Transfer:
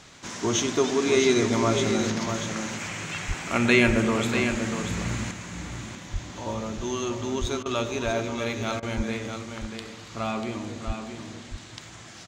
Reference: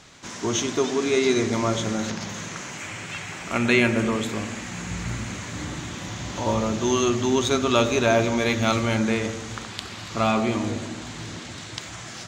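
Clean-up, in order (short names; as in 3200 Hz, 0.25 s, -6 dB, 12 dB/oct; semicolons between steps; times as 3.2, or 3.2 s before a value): de-plosive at 3.27/3.86/6.12/7.4/8.96/10.86; interpolate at 7.63/8.8, 25 ms; inverse comb 0.641 s -7.5 dB; gain correction +8 dB, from 5.31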